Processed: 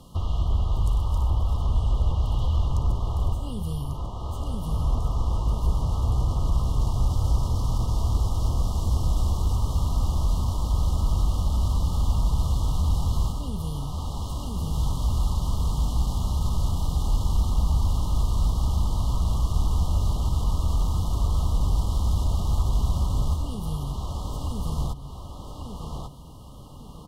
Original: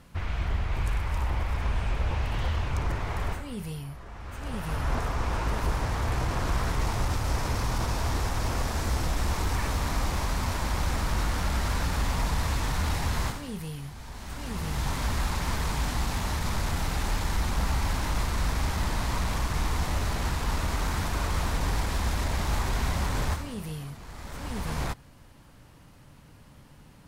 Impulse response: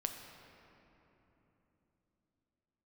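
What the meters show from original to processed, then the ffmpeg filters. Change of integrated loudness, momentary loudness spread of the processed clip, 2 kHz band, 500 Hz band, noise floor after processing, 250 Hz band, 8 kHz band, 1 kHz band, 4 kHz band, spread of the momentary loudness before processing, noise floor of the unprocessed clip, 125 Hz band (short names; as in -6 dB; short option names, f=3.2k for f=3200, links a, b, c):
+3.5 dB, 7 LU, under -25 dB, -2.5 dB, -39 dBFS, +1.0 dB, -3.5 dB, -3.5 dB, -3.5 dB, 8 LU, -52 dBFS, +5.5 dB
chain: -filter_complex "[0:a]asplit=2[a][b];[b]adelay=1144,lowpass=f=4.8k:p=1,volume=-9dB,asplit=2[c][d];[d]adelay=1144,lowpass=f=4.8k:p=1,volume=0.34,asplit=2[e][f];[f]adelay=1144,lowpass=f=4.8k:p=1,volume=0.34,asplit=2[g][h];[h]adelay=1144,lowpass=f=4.8k:p=1,volume=0.34[i];[a][c][e][g][i]amix=inputs=5:normalize=0,acrossover=split=170[j][k];[k]acompressor=threshold=-41dB:ratio=6[l];[j][l]amix=inputs=2:normalize=0,afftfilt=real='re*(1-between(b*sr/4096,1300,2800))':imag='im*(1-between(b*sr/4096,1300,2800))':win_size=4096:overlap=0.75,volume=5.5dB"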